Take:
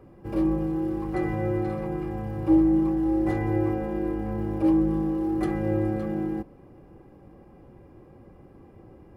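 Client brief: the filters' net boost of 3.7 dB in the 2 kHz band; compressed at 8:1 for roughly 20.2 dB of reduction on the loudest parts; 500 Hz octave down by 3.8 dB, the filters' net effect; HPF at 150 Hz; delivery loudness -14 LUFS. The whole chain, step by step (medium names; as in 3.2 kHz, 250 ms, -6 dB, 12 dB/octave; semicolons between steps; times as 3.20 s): high-pass 150 Hz; peaking EQ 500 Hz -6.5 dB; peaking EQ 2 kHz +4.5 dB; compression 8:1, threshold -40 dBFS; trim +29 dB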